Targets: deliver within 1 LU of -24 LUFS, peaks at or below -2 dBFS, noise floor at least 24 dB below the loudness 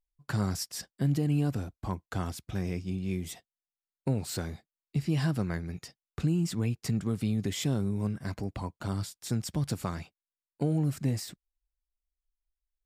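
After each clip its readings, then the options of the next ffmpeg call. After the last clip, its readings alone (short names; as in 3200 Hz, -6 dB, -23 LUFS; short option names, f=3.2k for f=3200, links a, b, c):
loudness -32.5 LUFS; peak -19.5 dBFS; loudness target -24.0 LUFS
-> -af "volume=8.5dB"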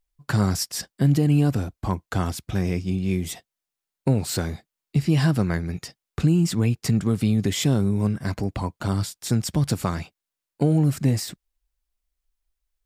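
loudness -24.0 LUFS; peak -11.0 dBFS; noise floor -87 dBFS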